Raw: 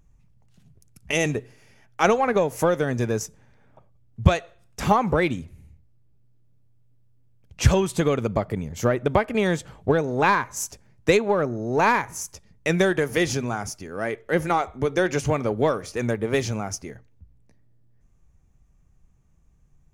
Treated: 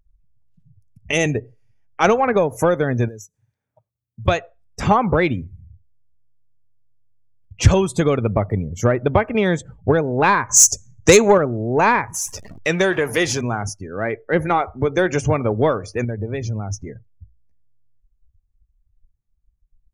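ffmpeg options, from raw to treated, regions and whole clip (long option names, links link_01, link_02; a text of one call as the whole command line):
ffmpeg -i in.wav -filter_complex "[0:a]asettb=1/sr,asplit=3[link_01][link_02][link_03];[link_01]atrim=end=3.084[link_04];[link_02]atrim=start=3.08:end=4.28,asetpts=PTS-STARTPTS,afade=type=in:duration=0.004:curve=qsin,afade=type=out:start_time=1.196:duration=0.004:curve=qsin,highpass=49,aemphasis=mode=production:type=75fm,acompressor=threshold=-40dB:ratio=4:attack=3.2:release=140:knee=1:detection=peak[link_05];[link_03]atrim=start=4.276[link_06];[link_04][link_05]acrossfade=duration=0.004:curve1=hsin:curve2=qsin[link_07];[link_07][link_06]acrossfade=duration=0.004:curve1=qsin:curve2=hsin,asettb=1/sr,asplit=3[link_08][link_09][link_10];[link_08]atrim=end=10.494[link_11];[link_09]atrim=start=10.49:end=11.38,asetpts=PTS-STARTPTS,afade=type=in:duration=0.004:curve=qsin,afade=type=out:start_time=0.886:duration=0.004:curve=qsin,equalizer=frequency=6600:width=1.7:gain=14.5,acontrast=52[link_12];[link_10]atrim=start=11.376[link_13];[link_11][link_12]acrossfade=duration=0.004:curve1=hsin:curve2=qsin[link_14];[link_14][link_13]acrossfade=duration=0.004:curve1=qsin:curve2=hsin,asettb=1/sr,asplit=3[link_15][link_16][link_17];[link_15]atrim=end=12.144[link_18];[link_16]atrim=start=12.14:end=13.41,asetpts=PTS-STARTPTS,afade=type=in:duration=0.004:curve=qsin,afade=type=out:start_time=1.266:duration=0.004:curve=qsin,aeval=exprs='val(0)+0.5*0.0355*sgn(val(0))':channel_layout=same,lowshelf=frequency=270:gain=-9[link_19];[link_17]atrim=start=13.406[link_20];[link_18][link_19]acrossfade=duration=0.004:curve1=hsin:curve2=qsin[link_21];[link_21][link_20]acrossfade=duration=0.004:curve1=qsin:curve2=hsin,asettb=1/sr,asplit=3[link_22][link_23][link_24];[link_22]atrim=end=16.044[link_25];[link_23]atrim=start=16.04:end=16.87,asetpts=PTS-STARTPTS,afade=type=in:duration=0.004:curve=qsin,afade=type=out:start_time=0.826:duration=0.004:curve=qsin,lowshelf=frequency=140:gain=8,acompressor=threshold=-34dB:ratio=2:attack=3.2:release=140:knee=1:detection=peak[link_26];[link_24]atrim=start=16.866[link_27];[link_25][link_26]acrossfade=duration=0.004:curve1=hsin:curve2=qsin[link_28];[link_28][link_27]acrossfade=duration=0.004:curve1=qsin:curve2=hsin,afftdn=noise_reduction=27:noise_floor=-39,equalizer=frequency=100:width_type=o:width=0.33:gain=8,acontrast=32,volume=-1dB" out.wav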